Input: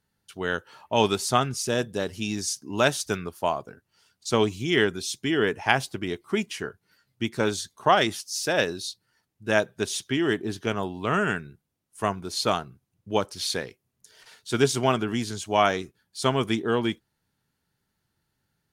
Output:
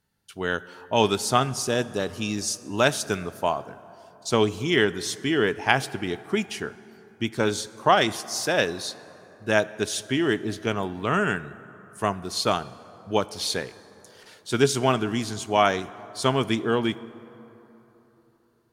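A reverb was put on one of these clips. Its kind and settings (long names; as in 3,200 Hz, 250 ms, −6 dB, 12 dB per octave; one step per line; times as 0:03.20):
dense smooth reverb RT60 3.7 s, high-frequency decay 0.45×, DRR 16.5 dB
level +1 dB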